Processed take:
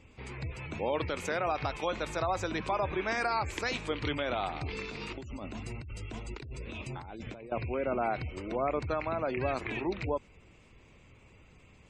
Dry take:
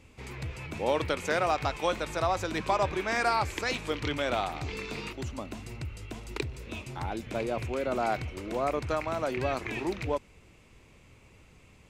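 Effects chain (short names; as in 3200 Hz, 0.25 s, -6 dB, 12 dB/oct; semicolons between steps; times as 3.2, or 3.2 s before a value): limiter -19.5 dBFS, peak gain reduction 6 dB; 4.89–7.52 negative-ratio compressor -40 dBFS, ratio -1; spectral gate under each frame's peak -30 dB strong; gain -1 dB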